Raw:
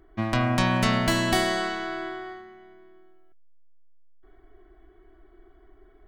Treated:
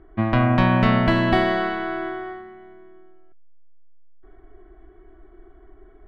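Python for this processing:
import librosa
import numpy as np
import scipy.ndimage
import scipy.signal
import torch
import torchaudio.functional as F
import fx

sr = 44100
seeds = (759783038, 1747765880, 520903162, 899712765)

y = fx.air_absorb(x, sr, metres=410.0)
y = y * 10.0 ** (6.5 / 20.0)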